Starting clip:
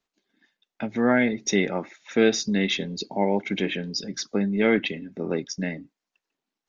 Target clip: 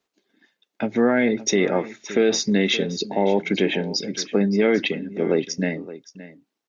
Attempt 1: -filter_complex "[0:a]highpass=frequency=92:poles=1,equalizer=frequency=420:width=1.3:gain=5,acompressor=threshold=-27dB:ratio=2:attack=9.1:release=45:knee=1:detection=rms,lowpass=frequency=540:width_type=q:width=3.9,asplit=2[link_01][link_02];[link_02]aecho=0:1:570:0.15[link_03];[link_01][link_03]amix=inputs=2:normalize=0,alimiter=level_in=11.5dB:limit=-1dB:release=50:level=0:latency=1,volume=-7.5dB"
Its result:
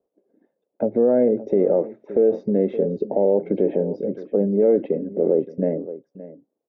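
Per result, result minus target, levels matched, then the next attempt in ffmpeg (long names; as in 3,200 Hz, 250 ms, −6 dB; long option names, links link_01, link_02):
downward compressor: peak gain reduction +4 dB; 500 Hz band +3.0 dB
-filter_complex "[0:a]highpass=frequency=92:poles=1,equalizer=frequency=420:width=1.3:gain=5,acompressor=threshold=-19dB:ratio=2:attack=9.1:release=45:knee=1:detection=rms,lowpass=frequency=540:width_type=q:width=3.9,asplit=2[link_01][link_02];[link_02]aecho=0:1:570:0.15[link_03];[link_01][link_03]amix=inputs=2:normalize=0,alimiter=level_in=11.5dB:limit=-1dB:release=50:level=0:latency=1,volume=-7.5dB"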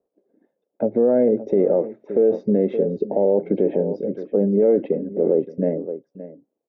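500 Hz band +3.0 dB
-filter_complex "[0:a]highpass=frequency=92:poles=1,equalizer=frequency=420:width=1.3:gain=5,acompressor=threshold=-19dB:ratio=2:attack=9.1:release=45:knee=1:detection=rms,asplit=2[link_01][link_02];[link_02]aecho=0:1:570:0.15[link_03];[link_01][link_03]amix=inputs=2:normalize=0,alimiter=level_in=11.5dB:limit=-1dB:release=50:level=0:latency=1,volume=-7.5dB"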